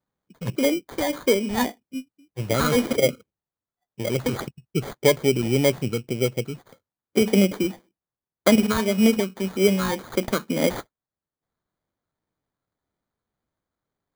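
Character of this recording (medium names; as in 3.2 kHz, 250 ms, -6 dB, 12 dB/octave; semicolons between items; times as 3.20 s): phasing stages 12, 1.8 Hz, lowest notch 650–3400 Hz; aliases and images of a low sample rate 2.7 kHz, jitter 0%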